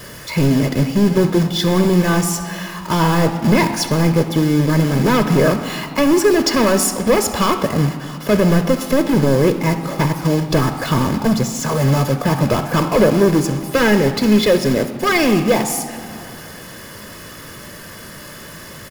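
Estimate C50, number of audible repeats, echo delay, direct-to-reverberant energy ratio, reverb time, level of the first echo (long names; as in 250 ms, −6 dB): 9.5 dB, 1, 66 ms, 8.0 dB, 2.5 s, −17.5 dB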